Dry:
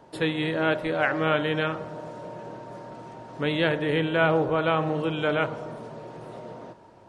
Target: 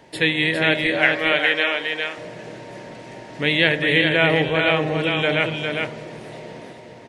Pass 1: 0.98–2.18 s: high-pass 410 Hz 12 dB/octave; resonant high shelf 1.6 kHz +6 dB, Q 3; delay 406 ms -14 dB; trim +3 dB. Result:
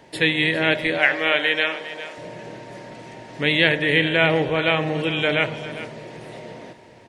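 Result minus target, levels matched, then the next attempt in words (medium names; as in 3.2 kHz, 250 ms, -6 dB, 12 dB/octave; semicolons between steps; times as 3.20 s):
echo-to-direct -9.5 dB
0.98–2.18 s: high-pass 410 Hz 12 dB/octave; resonant high shelf 1.6 kHz +6 dB, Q 3; delay 406 ms -4.5 dB; trim +3 dB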